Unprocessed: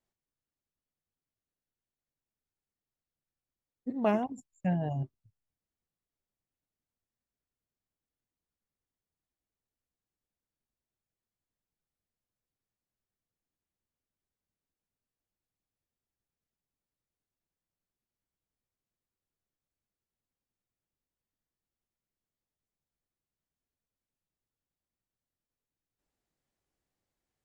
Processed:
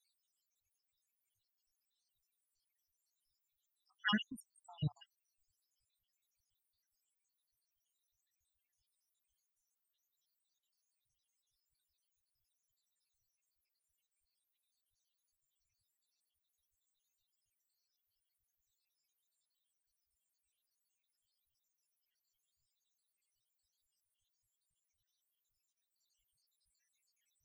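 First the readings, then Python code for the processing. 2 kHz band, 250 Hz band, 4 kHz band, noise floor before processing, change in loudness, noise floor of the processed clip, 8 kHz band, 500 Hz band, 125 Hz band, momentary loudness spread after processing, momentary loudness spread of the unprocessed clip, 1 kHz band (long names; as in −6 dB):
+4.5 dB, −10.5 dB, +14.0 dB, below −85 dBFS, −6.5 dB, below −85 dBFS, can't be measured, −27.5 dB, −9.5 dB, 13 LU, 12 LU, −11.0 dB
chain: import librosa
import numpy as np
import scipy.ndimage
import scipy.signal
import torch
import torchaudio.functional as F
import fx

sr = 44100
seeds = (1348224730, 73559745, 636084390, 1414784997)

y = fx.spec_dropout(x, sr, seeds[0], share_pct=84)
y = fx.curve_eq(y, sr, hz=(110.0, 680.0, 1400.0, 3800.0), db=(0, -27, 4, 14))
y = fx.spec_topn(y, sr, count=32)
y = y * librosa.db_to_amplitude(7.0)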